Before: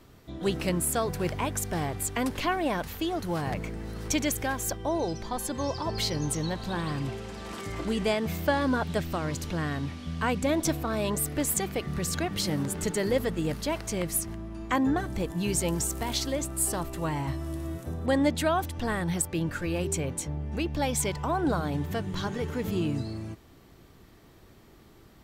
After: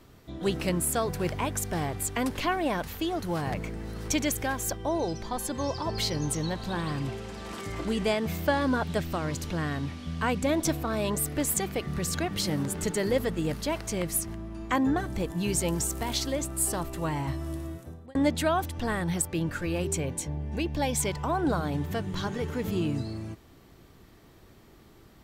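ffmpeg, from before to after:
ffmpeg -i in.wav -filter_complex "[0:a]asettb=1/sr,asplit=3[link_01][link_02][link_03];[link_01]atrim=end=20.024[link_04];[link_02]atrim=start=20.02:end=20.97,asetpts=PTS-STARTPTS,afade=type=in:duration=0.004:curve=qsin,afade=type=out:start_time=0.946:duration=0.004:curve=qsin,asuperstop=centerf=1300:order=4:qfactor=5.9[link_05];[link_03]atrim=start=20.966[link_06];[link_04][link_05]acrossfade=duration=0.004:curve1=hsin:curve2=qsin[link_07];[link_07][link_06]acrossfade=duration=0.004:curve1=qsin:curve2=hsin,asplit=2[link_08][link_09];[link_08]atrim=end=18.15,asetpts=PTS-STARTPTS,afade=type=out:start_time=17.53:duration=0.62[link_10];[link_09]atrim=start=18.15,asetpts=PTS-STARTPTS,afade=type=in:duration=0.004:curve=hsin[link_11];[link_10][link_11]concat=n=2:v=0:a=1" out.wav

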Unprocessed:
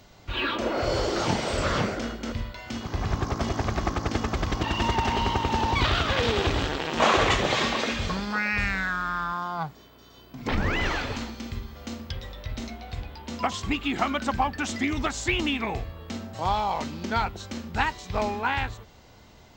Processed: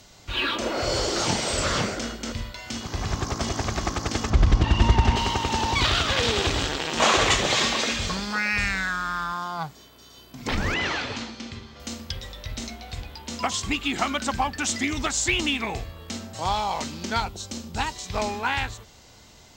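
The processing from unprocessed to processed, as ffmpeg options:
ffmpeg -i in.wav -filter_complex "[0:a]asettb=1/sr,asplit=3[link_01][link_02][link_03];[link_01]atrim=end=4.304[link_04];[link_02]atrim=start=4.3:end=5.16,asetpts=PTS-STARTPTS,afade=type=in:duration=0.004:curve=qsin,afade=type=out:start_time=0.856:duration=0.004:curve=qsin,aemphasis=mode=reproduction:type=bsi[link_05];[link_03]atrim=start=5.156[link_06];[link_04][link_05]acrossfade=duration=0.004:curve1=hsin:curve2=qsin[link_07];[link_07][link_06]acrossfade=duration=0.004:curve1=qsin:curve2=hsin,asettb=1/sr,asplit=3[link_08][link_09][link_10];[link_08]atrim=end=10.744[link_11];[link_09]atrim=start=10.74:end=11.8,asetpts=PTS-STARTPTS,afade=type=in:duration=0.004:curve=qsin,afade=type=out:start_time=1.056:duration=0.004:curve=qsin,highpass=100,lowpass=4800[link_12];[link_10]atrim=start=11.796[link_13];[link_11][link_12]acrossfade=duration=0.004:curve1=hsin:curve2=qsin[link_14];[link_14][link_13]acrossfade=duration=0.004:curve1=qsin:curve2=hsin,asettb=1/sr,asplit=3[link_15][link_16][link_17];[link_15]atrim=end=17.204[link_18];[link_16]atrim=start=17.2:end=17.96,asetpts=PTS-STARTPTS,afade=type=in:duration=0.004:curve=qsin,afade=type=out:start_time=0.756:duration=0.004:curve=qsin,equalizer=frequency=1800:width=1.1:gain=-7.5[link_19];[link_17]atrim=start=17.956[link_20];[link_18][link_19]acrossfade=duration=0.004:curve1=hsin:curve2=qsin[link_21];[link_21][link_20]acrossfade=duration=0.004:curve1=qsin:curve2=hsin,lowpass=frequency=12000:width=0.5412,lowpass=frequency=12000:width=1.3066,aemphasis=mode=production:type=75fm" out.wav

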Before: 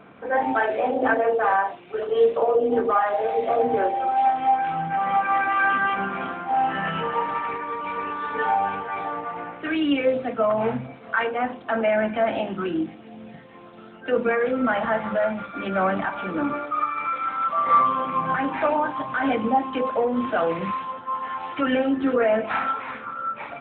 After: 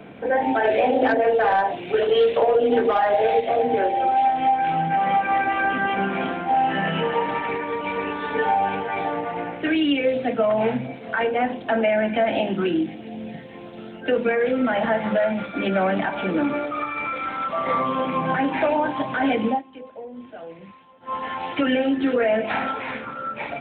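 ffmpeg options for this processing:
ffmpeg -i in.wav -filter_complex "[0:a]asplit=3[link_01][link_02][link_03];[link_01]afade=type=out:start_time=0.64:duration=0.02[link_04];[link_02]acontrast=81,afade=type=in:start_time=0.64:duration=0.02,afade=type=out:start_time=3.39:duration=0.02[link_05];[link_03]afade=type=in:start_time=3.39:duration=0.02[link_06];[link_04][link_05][link_06]amix=inputs=3:normalize=0,asplit=3[link_07][link_08][link_09];[link_07]atrim=end=19.62,asetpts=PTS-STARTPTS,afade=type=out:start_time=19.49:duration=0.13:silence=0.0841395[link_10];[link_08]atrim=start=19.62:end=21,asetpts=PTS-STARTPTS,volume=-21.5dB[link_11];[link_09]atrim=start=21,asetpts=PTS-STARTPTS,afade=type=in:duration=0.13:silence=0.0841395[link_12];[link_10][link_11][link_12]concat=n=3:v=0:a=1,equalizer=frequency=1200:width_type=o:width=0.65:gain=-12.5,acrossover=split=140|1000[link_13][link_14][link_15];[link_13]acompressor=threshold=-54dB:ratio=4[link_16];[link_14]acompressor=threshold=-28dB:ratio=4[link_17];[link_15]acompressor=threshold=-34dB:ratio=4[link_18];[link_16][link_17][link_18]amix=inputs=3:normalize=0,volume=8dB" out.wav

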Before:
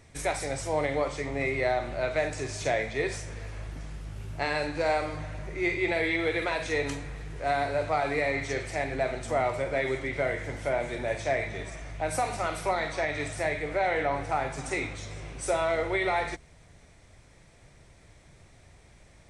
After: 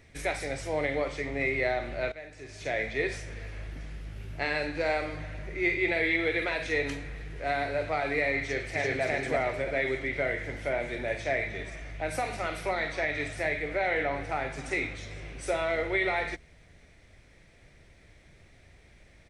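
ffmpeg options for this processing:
ffmpeg -i in.wav -filter_complex "[0:a]asplit=2[link_01][link_02];[link_02]afade=type=in:start_time=8.4:duration=0.01,afade=type=out:start_time=9.02:duration=0.01,aecho=0:1:340|680|1020|1360:1|0.3|0.09|0.027[link_03];[link_01][link_03]amix=inputs=2:normalize=0,asplit=2[link_04][link_05];[link_04]atrim=end=2.12,asetpts=PTS-STARTPTS,afade=type=out:start_time=2.116:duration=0.004:curve=hsin:silence=0.16788[link_06];[link_05]atrim=start=2.12,asetpts=PTS-STARTPTS,afade=type=in:duration=0.73:curve=qua:silence=0.16788[link_07];[link_06][link_07]concat=n=2:v=0:a=1,equalizer=frequency=125:width_type=o:width=1:gain=-4,equalizer=frequency=1000:width_type=o:width=1:gain=-7,equalizer=frequency=2000:width_type=o:width=1:gain=4,equalizer=frequency=8000:width_type=o:width=1:gain=-8" out.wav

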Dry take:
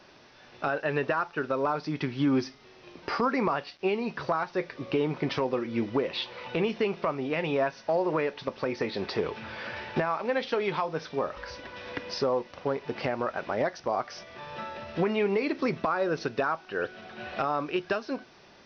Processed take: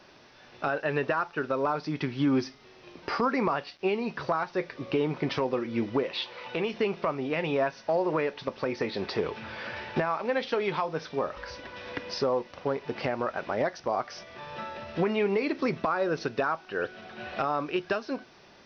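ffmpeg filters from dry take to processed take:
ffmpeg -i in.wav -filter_complex "[0:a]asettb=1/sr,asplit=3[link_01][link_02][link_03];[link_01]atrim=end=6.034[link_04];[link_02]atrim=start=6.03:end=6.74,asetpts=PTS-STARTPTS,afade=type=in:duration=0.004:curve=qsin,afade=type=out:start_time=0.706:duration=0.004:curve=qsin,lowshelf=frequency=260:gain=-8[link_05];[link_03]atrim=start=6.736[link_06];[link_04][link_05]acrossfade=duration=0.004:curve1=hsin:curve2=qsin[link_07];[link_07][link_06]acrossfade=duration=0.004:curve1=qsin:curve2=hsin" out.wav

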